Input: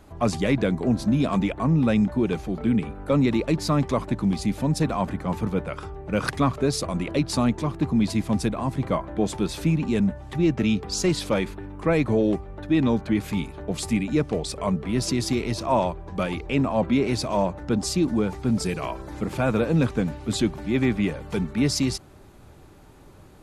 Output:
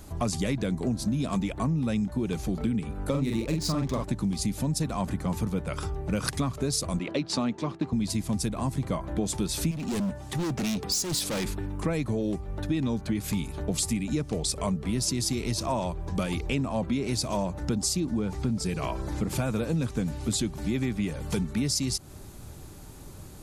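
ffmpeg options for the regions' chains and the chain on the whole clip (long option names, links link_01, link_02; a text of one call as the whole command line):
ffmpeg -i in.wav -filter_complex "[0:a]asettb=1/sr,asplit=3[link_01][link_02][link_03];[link_01]atrim=end=3.104[link_04];[link_02]atrim=start=3.1:end=4.04,asetpts=PTS-STARTPTS,afade=type=in:duration=0.004:curve=qsin,afade=type=out:start_time=0.936:duration=0.004:curve=qsin,adynamicsmooth=sensitivity=8:basefreq=3200,asplit=2[link_05][link_06];[link_06]adelay=44,volume=-3dB[link_07];[link_05][link_07]amix=inputs=2:normalize=0,atrim=end_sample=41454[link_08];[link_03]atrim=start=4.036[link_09];[link_04][link_08]acrossfade=duration=0.004:curve1=hsin:curve2=qsin[link_10];[link_10][link_09]acrossfade=duration=0.004:curve1=qsin:curve2=hsin,asettb=1/sr,asplit=3[link_11][link_12][link_13];[link_11]atrim=end=6.994[link_14];[link_12]atrim=start=6.99:end=7.93,asetpts=PTS-STARTPTS,afade=type=in:duration=0.004:curve=qsin,afade=type=out:start_time=0.936:duration=0.004:curve=qsin,agate=range=-33dB:threshold=-31dB:ratio=3:release=100:detection=peak,highpass=220,lowpass=4000[link_15];[link_13]atrim=start=7.926[link_16];[link_14][link_15]acrossfade=duration=0.004:curve1=hsin:curve2=qsin[link_17];[link_17][link_16]acrossfade=duration=0.004:curve1=qsin:curve2=hsin,asettb=1/sr,asplit=3[link_18][link_19][link_20];[link_18]atrim=end=9.714[link_21];[link_19]atrim=start=9.71:end=11.45,asetpts=PTS-STARTPTS,afade=type=in:duration=0.004:curve=qsin,afade=type=out:start_time=1.736:duration=0.004:curve=qsin,highpass=frequency=170:poles=1,asoftclip=type=hard:threshold=-28dB[link_22];[link_20]atrim=start=11.446[link_23];[link_21][link_22]acrossfade=duration=0.004:curve1=hsin:curve2=qsin[link_24];[link_24][link_23]acrossfade=duration=0.004:curve1=qsin:curve2=hsin,asettb=1/sr,asplit=3[link_25][link_26][link_27];[link_25]atrim=end=18.004[link_28];[link_26]atrim=start=18:end=19.3,asetpts=PTS-STARTPTS,afade=type=in:duration=0.004:curve=qsin,afade=type=out:start_time=1.296:duration=0.004:curve=qsin,highshelf=frequency=6300:gain=-11,acompressor=mode=upward:threshold=-31dB:ratio=2.5:attack=3.2:release=140:knee=2.83:detection=peak[link_29];[link_27]atrim=start=19.296[link_30];[link_28][link_29]acrossfade=duration=0.004:curve1=hsin:curve2=qsin[link_31];[link_31][link_30]acrossfade=duration=0.004:curve1=qsin:curve2=hsin,bass=frequency=250:gain=6,treble=frequency=4000:gain=13,acompressor=threshold=-25dB:ratio=6" out.wav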